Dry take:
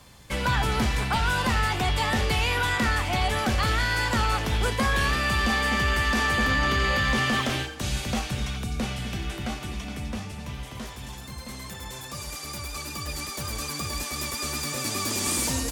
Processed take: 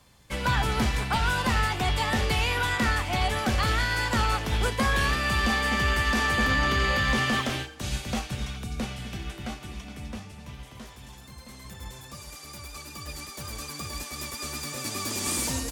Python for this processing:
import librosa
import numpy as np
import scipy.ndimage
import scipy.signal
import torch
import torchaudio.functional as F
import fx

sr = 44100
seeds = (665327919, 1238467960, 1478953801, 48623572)

y = fx.low_shelf(x, sr, hz=150.0, db=7.5, at=(11.65, 12.15))
y = fx.upward_expand(y, sr, threshold_db=-36.0, expansion=1.5)